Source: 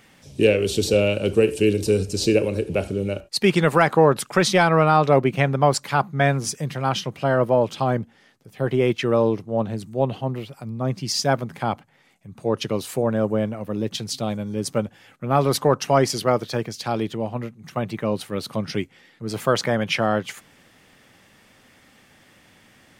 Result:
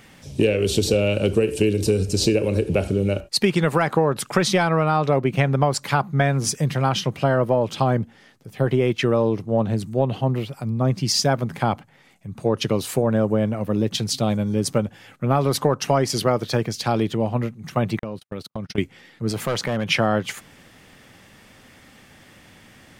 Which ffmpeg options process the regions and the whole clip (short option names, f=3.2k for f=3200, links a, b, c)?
-filter_complex "[0:a]asettb=1/sr,asplit=3[a][b][c];[a]atrim=end=17.994[d];[b]atrim=start=17.99:end=18.78,asetpts=PTS-STARTPTS,afade=t=in:d=0.004:c=qsin,afade=t=out:st=0.786:d=0.004:c=qsin,agate=range=-56dB:threshold=-31dB:ratio=16:release=100:detection=peak,acompressor=threshold=-31dB:ratio=10:attack=3.2:release=140:knee=1:detection=peak[e];[c]atrim=start=18.776[f];[d][e]acrossfade=d=0.004:c1=hsin:c2=qsin[g];[g][f]acrossfade=d=0.004:c1=qsin:c2=hsin,asettb=1/sr,asplit=3[h][i][j];[h]atrim=end=19.314[k];[i]atrim=start=19.31:end=19.89,asetpts=PTS-STARTPTS,afade=t=in:d=0.004:c=qsin,afade=t=out:st=0.576:d=0.004:c=qsin,asoftclip=type=hard:threshold=-16dB,acompressor=threshold=-30dB:ratio=2:attack=3.2:release=140:knee=1:detection=peak[l];[j]atrim=start=19.886[m];[k][l]acrossfade=d=0.004:c1=hsin:c2=qsin[n];[n][m]acrossfade=d=0.004:c1=qsin:c2=hsin,lowshelf=f=160:g=5,acompressor=threshold=-19dB:ratio=6,volume=4dB"